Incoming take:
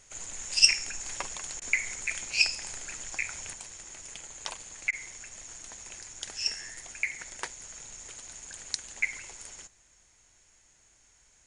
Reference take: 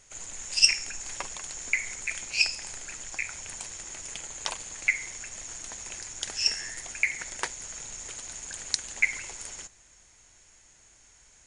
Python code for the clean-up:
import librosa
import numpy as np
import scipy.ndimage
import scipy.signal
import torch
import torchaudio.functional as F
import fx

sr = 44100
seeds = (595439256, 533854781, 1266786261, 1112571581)

y = fx.fix_interpolate(x, sr, at_s=(1.6, 4.91), length_ms=16.0)
y = fx.gain(y, sr, db=fx.steps((0.0, 0.0), (3.53, 5.0)))